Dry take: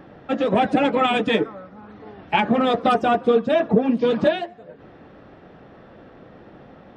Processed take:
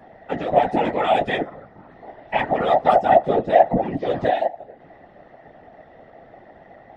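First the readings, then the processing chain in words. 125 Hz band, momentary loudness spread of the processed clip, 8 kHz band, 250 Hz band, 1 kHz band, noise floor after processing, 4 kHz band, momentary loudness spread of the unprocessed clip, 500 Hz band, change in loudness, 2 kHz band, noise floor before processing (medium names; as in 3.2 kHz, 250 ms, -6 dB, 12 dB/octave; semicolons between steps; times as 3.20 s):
-1.0 dB, 10 LU, no reading, -6.0 dB, +3.5 dB, -49 dBFS, -5.5 dB, 6 LU, +1.0 dB, +0.5 dB, -2.0 dB, -47 dBFS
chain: small resonant body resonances 690/1900 Hz, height 18 dB, ringing for 55 ms; chorus voices 2, 0.76 Hz, delay 14 ms, depth 4.3 ms; whisper effect; trim -3 dB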